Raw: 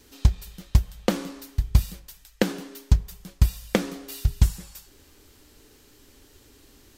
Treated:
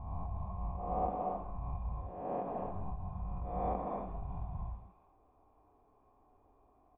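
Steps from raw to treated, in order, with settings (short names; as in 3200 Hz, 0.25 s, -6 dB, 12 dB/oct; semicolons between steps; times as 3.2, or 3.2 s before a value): spectral swells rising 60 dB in 0.97 s; echo 0.138 s -18.5 dB; limiter -13 dBFS, peak gain reduction 9 dB; vocal tract filter a; low shelf 480 Hz +8 dB; non-linear reverb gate 0.32 s rising, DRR 1 dB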